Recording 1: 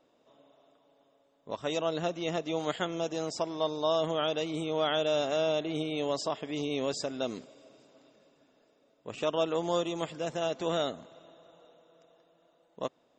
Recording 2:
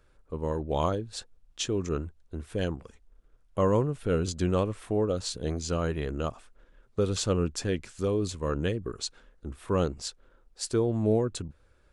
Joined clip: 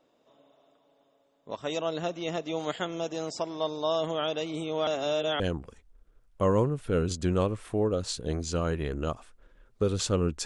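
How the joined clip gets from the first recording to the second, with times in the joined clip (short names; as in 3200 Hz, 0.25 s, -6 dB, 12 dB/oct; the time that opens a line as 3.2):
recording 1
4.87–5.4 reverse
5.4 switch to recording 2 from 2.57 s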